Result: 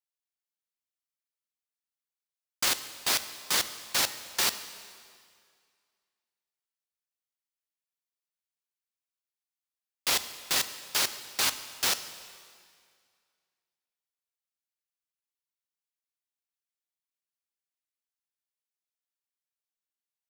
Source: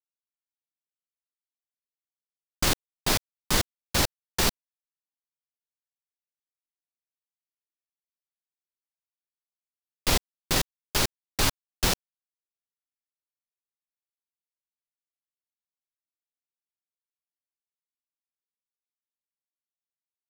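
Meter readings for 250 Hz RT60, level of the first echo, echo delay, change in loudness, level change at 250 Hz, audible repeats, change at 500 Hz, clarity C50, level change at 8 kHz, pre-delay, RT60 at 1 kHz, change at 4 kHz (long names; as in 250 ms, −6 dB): 2.1 s, no echo audible, no echo audible, −1.0 dB, −13.0 dB, no echo audible, −8.0 dB, 12.5 dB, 0.0 dB, 5 ms, 2.1 s, 0.0 dB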